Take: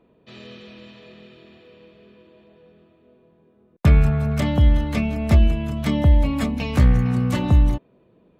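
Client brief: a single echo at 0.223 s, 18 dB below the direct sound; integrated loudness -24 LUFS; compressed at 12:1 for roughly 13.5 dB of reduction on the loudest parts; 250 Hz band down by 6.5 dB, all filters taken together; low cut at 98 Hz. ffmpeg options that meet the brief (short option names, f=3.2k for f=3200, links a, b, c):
-af "highpass=98,equalizer=f=250:t=o:g=-8.5,acompressor=threshold=-29dB:ratio=12,aecho=1:1:223:0.126,volume=11dB"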